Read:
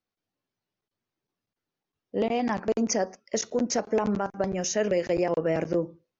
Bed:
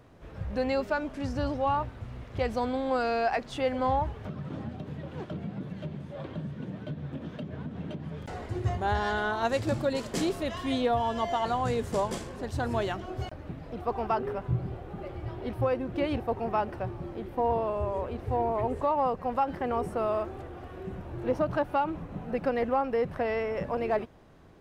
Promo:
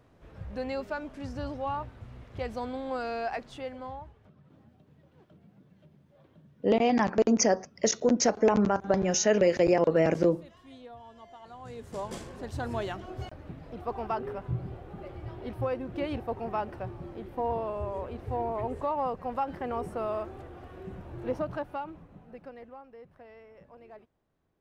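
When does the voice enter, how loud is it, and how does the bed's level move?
4.50 s, +2.5 dB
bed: 3.40 s -5.5 dB
4.33 s -21 dB
11.42 s -21 dB
12.20 s -3.5 dB
21.33 s -3.5 dB
22.87 s -22 dB

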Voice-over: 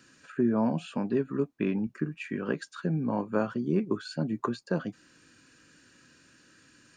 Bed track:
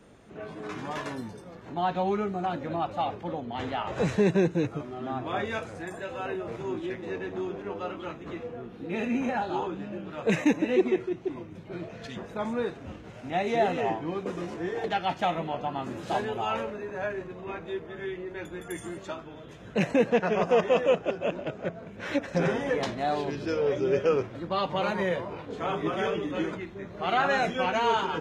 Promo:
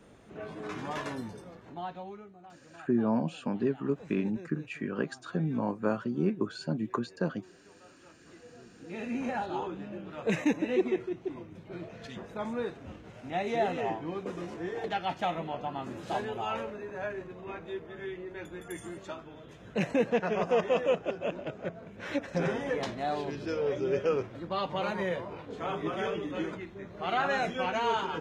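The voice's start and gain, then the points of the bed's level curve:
2.50 s, -1.5 dB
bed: 1.44 s -1.5 dB
2.36 s -22.5 dB
7.88 s -22.5 dB
9.29 s -4 dB

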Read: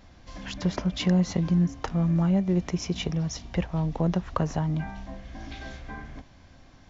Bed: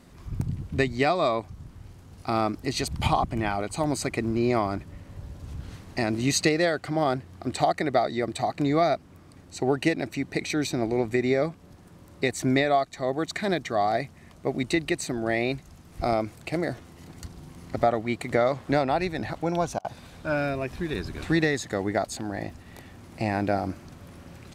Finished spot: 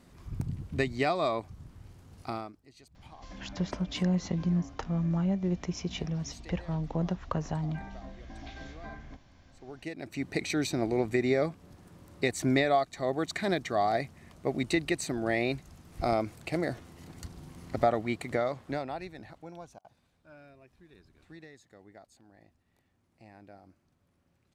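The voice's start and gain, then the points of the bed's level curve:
2.95 s, -5.5 dB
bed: 2.25 s -5 dB
2.65 s -28.5 dB
9.51 s -28.5 dB
10.25 s -3 dB
18.04 s -3 dB
20.24 s -27 dB

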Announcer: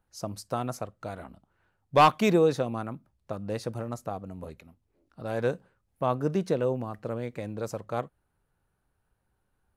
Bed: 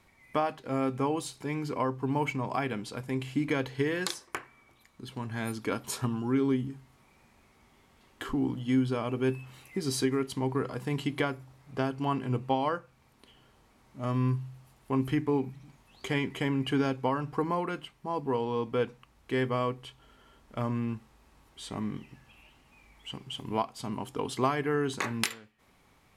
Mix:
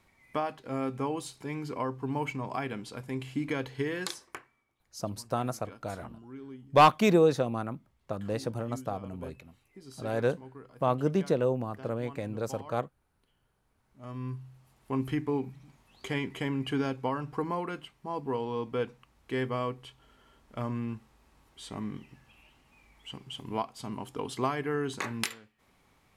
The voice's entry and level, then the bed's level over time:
4.80 s, 0.0 dB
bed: 4.24 s -3 dB
4.69 s -18 dB
13.46 s -18 dB
14.90 s -2.5 dB

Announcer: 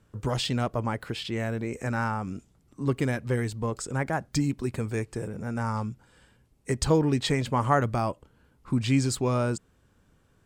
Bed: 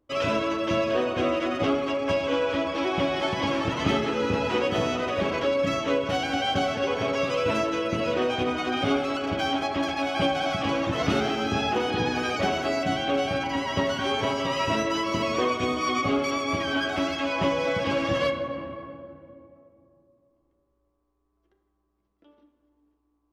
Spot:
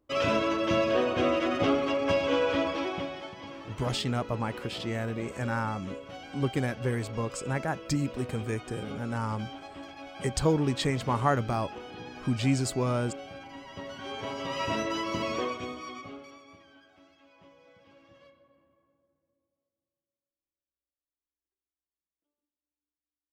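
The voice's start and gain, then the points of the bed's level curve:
3.55 s, -2.5 dB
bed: 2.66 s -1 dB
3.35 s -17 dB
13.71 s -17 dB
14.65 s -5 dB
15.33 s -5 dB
16.84 s -32.5 dB

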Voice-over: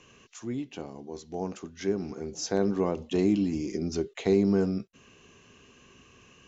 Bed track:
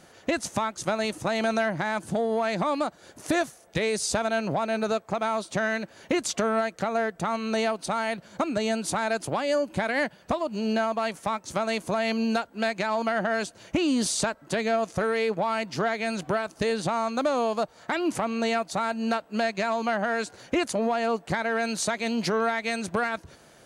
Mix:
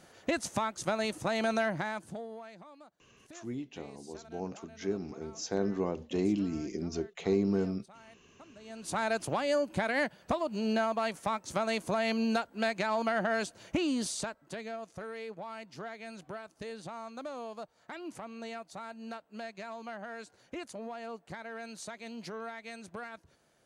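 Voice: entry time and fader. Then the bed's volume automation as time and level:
3.00 s, -5.0 dB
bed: 1.76 s -4.5 dB
2.70 s -27.5 dB
8.58 s -27.5 dB
8.98 s -4 dB
13.64 s -4 dB
14.78 s -16 dB

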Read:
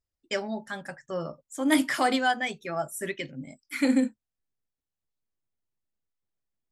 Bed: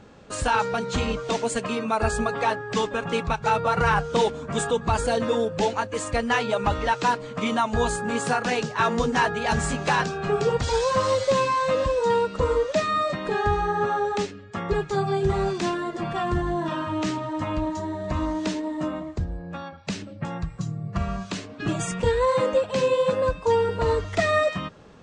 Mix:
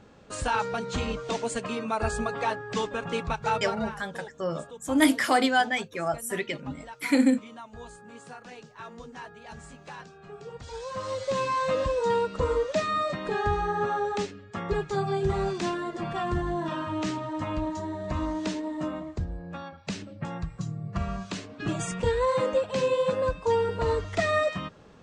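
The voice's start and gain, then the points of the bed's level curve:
3.30 s, +2.0 dB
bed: 3.55 s -4.5 dB
3.97 s -20.5 dB
10.41 s -20.5 dB
11.57 s -3.5 dB

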